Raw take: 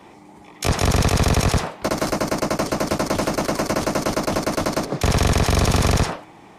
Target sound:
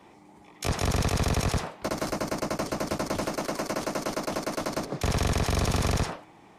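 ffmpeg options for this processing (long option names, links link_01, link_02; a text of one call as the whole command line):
ffmpeg -i in.wav -filter_complex "[0:a]asettb=1/sr,asplit=3[link_01][link_02][link_03];[link_01]atrim=end=3.284[link_04];[link_02]atrim=start=3.28:end=4.71,asetpts=PTS-STARTPTS,afade=type=in:duration=0.004:curve=qsin,afade=type=out:start_time=1.426:duration=0.004:curve=qsin,equalizer=frequency=62:width_type=o:width=1.9:gain=-10.5[link_05];[link_03]atrim=start=4.706[link_06];[link_04][link_05]acrossfade=duration=0.004:curve1=hsin:curve2=qsin[link_07];[link_07][link_06]acrossfade=duration=0.004:curve1=qsin:curve2=hsin,volume=-8dB" out.wav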